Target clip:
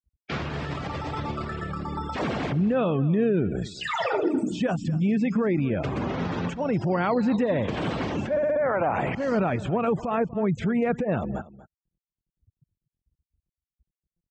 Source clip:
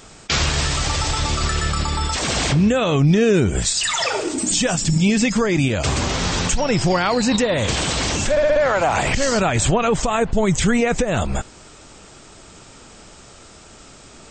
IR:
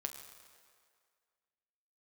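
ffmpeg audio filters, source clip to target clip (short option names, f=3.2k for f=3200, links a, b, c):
-af "afftfilt=real='re*gte(hypot(re,im),0.0562)':imag='im*gte(hypot(re,im),0.0562)':win_size=1024:overlap=0.75,lowshelf=f=440:g=9,acompressor=threshold=-17dB:ratio=4,alimiter=limit=-15dB:level=0:latency=1:release=119,highpass=160,lowpass=2.1k,aecho=1:1:241:0.126"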